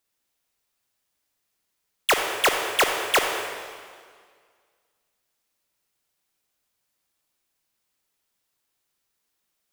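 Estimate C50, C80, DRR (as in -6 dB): 3.5 dB, 4.5 dB, 3.0 dB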